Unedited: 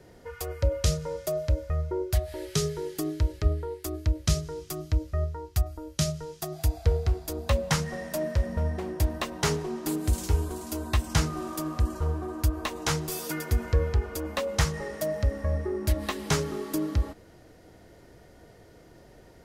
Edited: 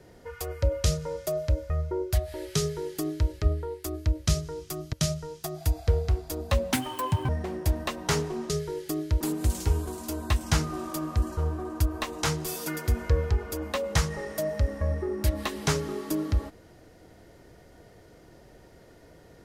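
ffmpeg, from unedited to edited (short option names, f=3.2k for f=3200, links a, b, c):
-filter_complex "[0:a]asplit=6[a][b][c][d][e][f];[a]atrim=end=4.932[g];[b]atrim=start=5.908:end=7.714[h];[c]atrim=start=7.71:end=8.63,asetpts=PTS-STARTPTS,asetrate=72765,aresample=44100,atrim=end_sample=24589,asetpts=PTS-STARTPTS[i];[d]atrim=start=8.626:end=9.842[j];[e]atrim=start=2.588:end=3.302[k];[f]atrim=start=9.838[l];[g][h]acrossfade=d=0.004:c1=hsin:c2=hsin[m];[m][i]acrossfade=d=0.004:c1=hsin:c2=hsin[n];[n][j]acrossfade=d=0.004:c1=hsin:c2=hsin[o];[o][k]acrossfade=d=0.004:c1=hsin:c2=hsin[p];[p][l]acrossfade=d=0.004:c1=hsin:c2=hsin"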